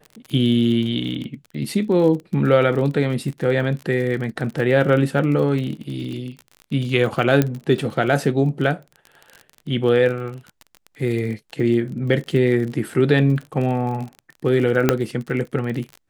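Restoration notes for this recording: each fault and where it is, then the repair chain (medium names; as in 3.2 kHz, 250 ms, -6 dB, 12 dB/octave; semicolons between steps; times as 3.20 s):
crackle 35 per s -28 dBFS
7.42 s: pop -5 dBFS
14.89 s: pop -1 dBFS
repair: de-click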